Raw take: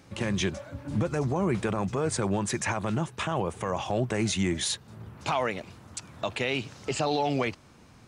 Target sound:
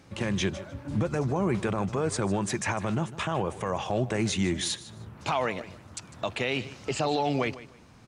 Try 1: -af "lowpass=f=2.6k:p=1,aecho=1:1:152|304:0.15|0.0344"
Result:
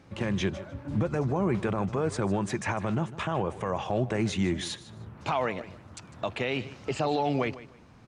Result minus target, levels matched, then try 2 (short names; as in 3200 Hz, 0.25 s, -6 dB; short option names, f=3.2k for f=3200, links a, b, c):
8000 Hz band -6.5 dB
-af "lowpass=f=9.7k:p=1,aecho=1:1:152|304:0.15|0.0344"